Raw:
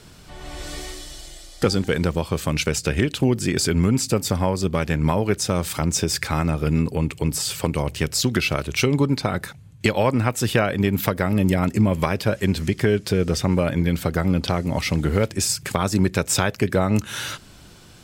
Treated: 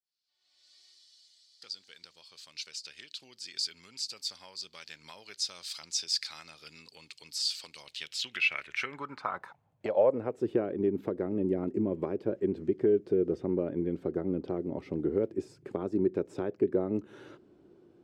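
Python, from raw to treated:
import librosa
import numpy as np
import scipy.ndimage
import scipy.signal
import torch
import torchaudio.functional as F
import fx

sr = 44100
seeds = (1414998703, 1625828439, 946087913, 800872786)

y = fx.fade_in_head(x, sr, length_s=5.58)
y = fx.filter_sweep_bandpass(y, sr, from_hz=4500.0, to_hz=360.0, start_s=7.79, end_s=10.48, q=3.9)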